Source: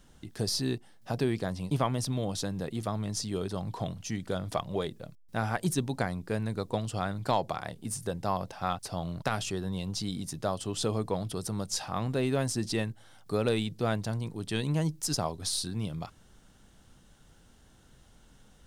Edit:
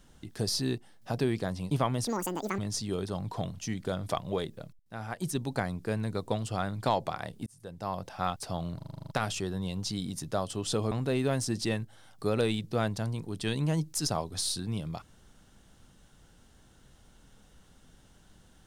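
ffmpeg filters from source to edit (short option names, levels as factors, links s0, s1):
-filter_complex "[0:a]asplit=14[s0][s1][s2][s3][s4][s5][s6][s7][s8][s9][s10][s11][s12][s13];[s0]atrim=end=2.074[s14];[s1]atrim=start=2.07:end=3.01,asetpts=PTS-STARTPTS,asetrate=80703,aresample=44100,atrim=end_sample=22652,asetpts=PTS-STARTPTS[s15];[s2]atrim=start=3.006:end=5.22,asetpts=PTS-STARTPTS,afade=t=out:st=2.21:d=0.004:c=hsin:silence=0.158489[s16];[s3]atrim=start=5.22:end=7.89,asetpts=PTS-STARTPTS,afade=t=in:d=0.84:silence=0.158489,afade=t=out:st=2.666:d=0.004:c=hsin[s17];[s4]atrim=start=7.89:end=9.232,asetpts=PTS-STARTPTS,afade=t=in:d=0.7[s18];[s5]atrim=start=9.188:end=9.232[s19];[s6]atrim=start=9.188:end=9.232[s20];[s7]atrim=start=9.188:end=9.232[s21];[s8]atrim=start=9.188:end=9.232[s22];[s9]atrim=start=9.188:end=9.232[s23];[s10]atrim=start=9.188:end=9.232[s24];[s11]atrim=start=9.188:end=9.232[s25];[s12]atrim=start=9.188:end=11.022[s26];[s13]atrim=start=11.988[s27];[s14][s15]acrossfade=d=0.004:c1=hsin:c2=hsin[s28];[s16][s17][s18]concat=n=3:v=0:a=1[s29];[s28][s29]acrossfade=d=0.004:c1=hsin:c2=hsin[s30];[s30][s19]acrossfade=d=0.004:c1=hsin:c2=hsin[s31];[s31][s20]acrossfade=d=0.004:c1=hsin:c2=hsin[s32];[s32][s21]acrossfade=d=0.004:c1=hsin:c2=hsin[s33];[s33][s22]acrossfade=d=0.004:c1=hsin:c2=hsin[s34];[s34][s23]acrossfade=d=0.004:c1=hsin:c2=hsin[s35];[s35][s24]acrossfade=d=0.004:c1=hsin:c2=hsin[s36];[s36][s25]acrossfade=d=0.004:c1=hsin:c2=hsin[s37];[s37][s26]acrossfade=d=0.004:c1=hsin:c2=hsin[s38];[s38][s27]acrossfade=d=0.004:c1=hsin:c2=hsin"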